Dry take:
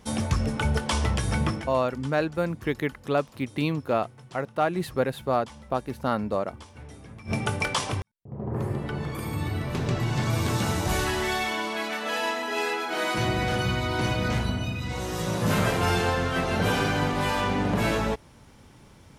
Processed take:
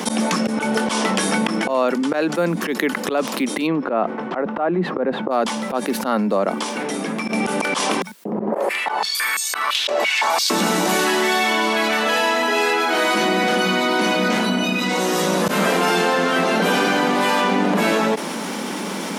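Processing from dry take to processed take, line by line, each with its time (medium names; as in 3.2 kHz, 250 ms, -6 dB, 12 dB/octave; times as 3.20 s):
3.66–5.30 s: low-pass 2 kHz -> 1.1 kHz
8.52–10.50 s: step-sequenced high-pass 5.9 Hz 590–6500 Hz
whole clip: steep high-pass 180 Hz 72 dB/octave; slow attack 131 ms; level flattener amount 70%; trim +6 dB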